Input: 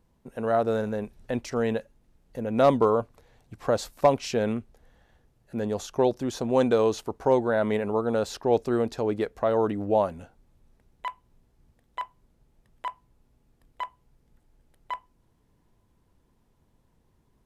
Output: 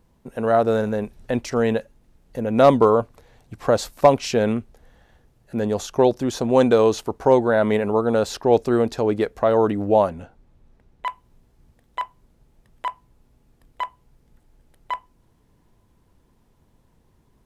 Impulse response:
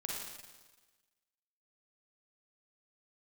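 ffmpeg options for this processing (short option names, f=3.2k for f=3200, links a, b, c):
-filter_complex "[0:a]asettb=1/sr,asplit=3[a][b][c];[a]atrim=end=10.094[d];[b]atrim=start=10.09:end=11.06,asetpts=PTS-STARTPTS,afade=t=in:d=0.004:c=qsin,afade=t=out:st=0.966:d=0.004:c=qsin,lowpass=f=3.4k:p=1[e];[c]atrim=start=11.056[f];[d][e]acrossfade=d=0.004:c1=hsin:c2=qsin[g];[g][f]acrossfade=d=0.004:c1=qsin:c2=hsin,volume=6dB"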